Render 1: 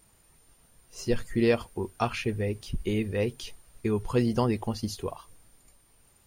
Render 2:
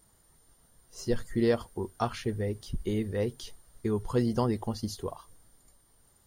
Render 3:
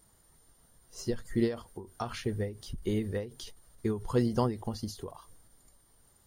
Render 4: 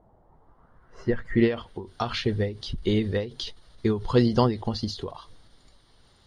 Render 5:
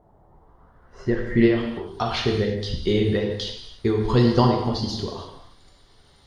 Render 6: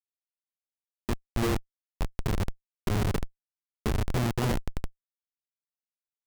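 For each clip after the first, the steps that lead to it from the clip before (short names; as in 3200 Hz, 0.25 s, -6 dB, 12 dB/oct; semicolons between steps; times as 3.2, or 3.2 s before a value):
bell 2500 Hz -14.5 dB 0.27 oct; gain -2 dB
ending taper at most 140 dB/s
low-pass sweep 740 Hz -> 4000 Hz, 0.19–1.88; gain +7 dB
non-linear reverb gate 0.36 s falling, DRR 0.5 dB; gain +1.5 dB
Schmitt trigger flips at -16 dBFS; gain -1.5 dB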